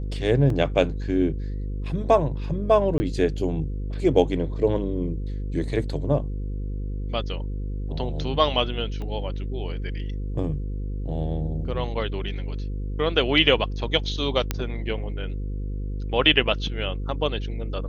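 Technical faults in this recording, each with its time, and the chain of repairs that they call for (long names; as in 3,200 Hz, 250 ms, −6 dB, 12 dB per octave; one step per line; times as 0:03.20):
mains buzz 50 Hz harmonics 10 −29 dBFS
0:00.50: drop-out 2.5 ms
0:02.98–0:03.00: drop-out 20 ms
0:09.02: click −24 dBFS
0:14.51: click −9 dBFS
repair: click removal
hum removal 50 Hz, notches 10
repair the gap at 0:00.50, 2.5 ms
repair the gap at 0:02.98, 20 ms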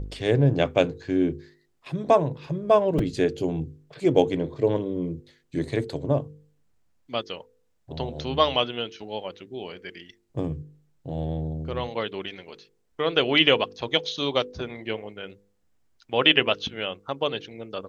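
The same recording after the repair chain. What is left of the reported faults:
0:09.02: click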